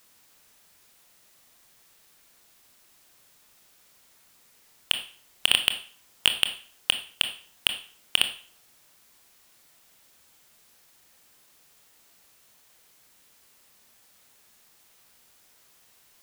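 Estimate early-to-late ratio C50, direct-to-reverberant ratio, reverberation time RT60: 11.0 dB, 7.0 dB, 0.45 s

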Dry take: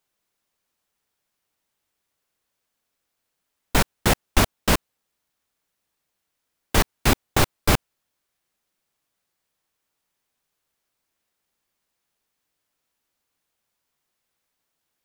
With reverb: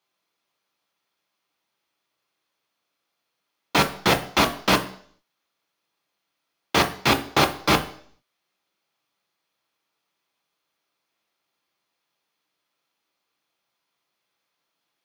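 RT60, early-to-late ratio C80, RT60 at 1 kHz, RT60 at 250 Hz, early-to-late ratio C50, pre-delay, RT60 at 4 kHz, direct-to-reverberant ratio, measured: 0.55 s, 17.5 dB, 0.55 s, 0.55 s, 14.0 dB, 3 ms, 0.65 s, 6.0 dB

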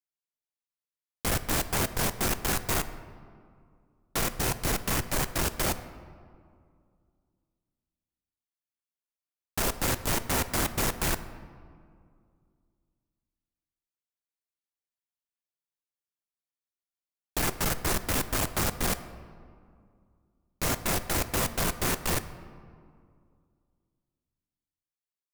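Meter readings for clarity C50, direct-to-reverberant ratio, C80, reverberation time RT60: 13.0 dB, 11.0 dB, 14.0 dB, 2.2 s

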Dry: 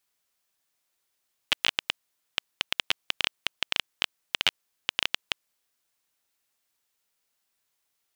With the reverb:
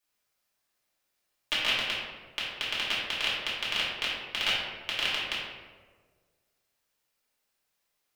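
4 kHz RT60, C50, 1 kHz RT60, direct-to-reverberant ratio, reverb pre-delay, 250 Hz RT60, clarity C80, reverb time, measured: 0.80 s, -0.5 dB, 1.3 s, -8.5 dB, 3 ms, 1.6 s, 2.5 dB, 1.5 s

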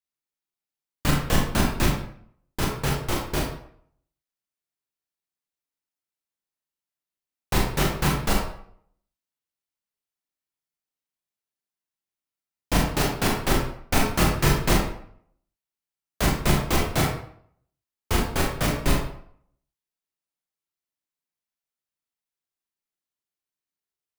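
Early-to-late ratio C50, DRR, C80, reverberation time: 3.0 dB, -1.5 dB, 7.0 dB, 0.60 s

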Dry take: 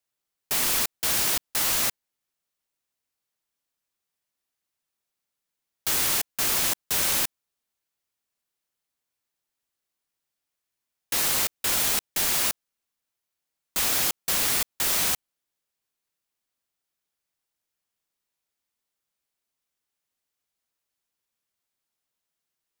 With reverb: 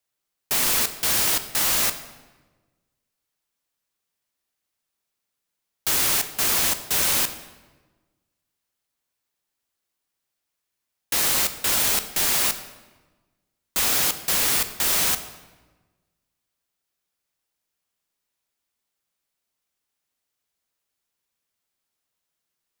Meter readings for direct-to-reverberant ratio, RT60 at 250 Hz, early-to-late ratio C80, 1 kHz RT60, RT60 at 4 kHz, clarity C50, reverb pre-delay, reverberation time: 9.5 dB, 1.5 s, 13.0 dB, 1.2 s, 0.90 s, 11.5 dB, 12 ms, 1.3 s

